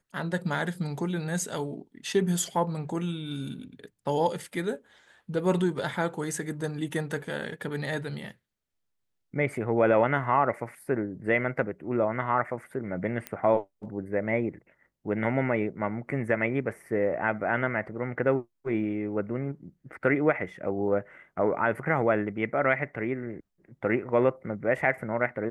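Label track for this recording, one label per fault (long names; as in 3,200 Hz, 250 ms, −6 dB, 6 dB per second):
13.270000	13.270000	click −17 dBFS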